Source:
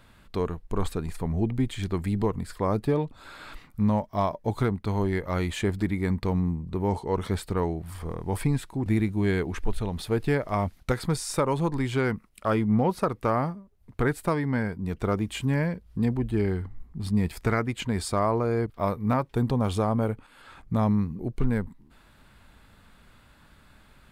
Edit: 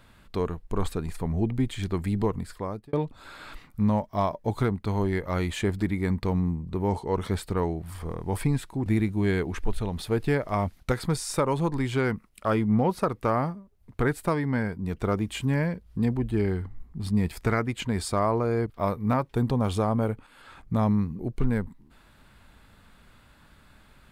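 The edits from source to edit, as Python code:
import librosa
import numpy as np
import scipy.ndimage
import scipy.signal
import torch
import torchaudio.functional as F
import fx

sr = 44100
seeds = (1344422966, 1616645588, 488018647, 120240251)

y = fx.edit(x, sr, fx.fade_out_span(start_s=2.36, length_s=0.57), tone=tone)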